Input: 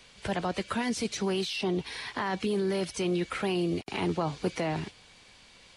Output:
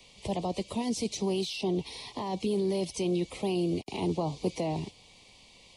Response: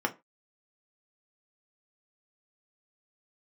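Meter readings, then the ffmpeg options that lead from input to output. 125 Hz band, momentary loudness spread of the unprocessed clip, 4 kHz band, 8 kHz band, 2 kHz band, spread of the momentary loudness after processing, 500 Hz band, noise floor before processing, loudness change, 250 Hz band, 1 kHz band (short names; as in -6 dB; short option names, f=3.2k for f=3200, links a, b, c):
0.0 dB, 4 LU, -2.5 dB, 0.0 dB, -10.0 dB, 6 LU, 0.0 dB, -56 dBFS, -1.0 dB, 0.0 dB, -3.0 dB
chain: -filter_complex "[0:a]acrossover=split=210|1200|2900[a][b][c][d];[c]acompressor=threshold=-54dB:ratio=6[e];[a][b][e][d]amix=inputs=4:normalize=0,asuperstop=centerf=1500:order=4:qfactor=1.4"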